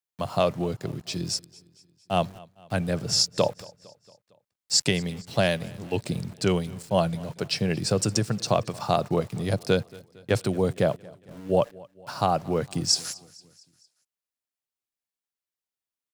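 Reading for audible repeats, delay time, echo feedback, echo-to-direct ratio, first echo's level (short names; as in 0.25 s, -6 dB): 3, 0.228 s, 55%, -21.5 dB, -23.0 dB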